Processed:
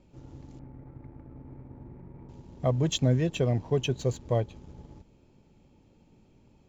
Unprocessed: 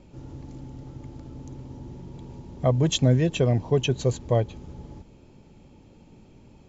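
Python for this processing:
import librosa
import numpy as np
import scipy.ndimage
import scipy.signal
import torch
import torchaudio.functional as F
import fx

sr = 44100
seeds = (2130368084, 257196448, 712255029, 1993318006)

p1 = fx.steep_lowpass(x, sr, hz=2400.0, slope=96, at=(0.59, 2.29))
p2 = np.sign(p1) * np.maximum(np.abs(p1) - 10.0 ** (-42.0 / 20.0), 0.0)
p3 = p1 + (p2 * librosa.db_to_amplitude(-4.0))
y = p3 * librosa.db_to_amplitude(-8.5)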